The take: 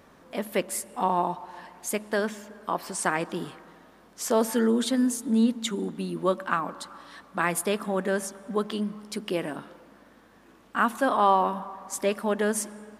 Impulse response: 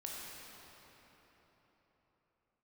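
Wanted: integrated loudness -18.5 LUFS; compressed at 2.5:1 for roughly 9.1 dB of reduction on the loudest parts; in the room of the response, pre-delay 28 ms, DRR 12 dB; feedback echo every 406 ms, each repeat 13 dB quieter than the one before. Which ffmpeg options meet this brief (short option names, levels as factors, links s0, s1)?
-filter_complex "[0:a]acompressor=threshold=0.0282:ratio=2.5,aecho=1:1:406|812|1218:0.224|0.0493|0.0108,asplit=2[s0][s1];[1:a]atrim=start_sample=2205,adelay=28[s2];[s1][s2]afir=irnorm=-1:irlink=0,volume=0.266[s3];[s0][s3]amix=inputs=2:normalize=0,volume=5.62"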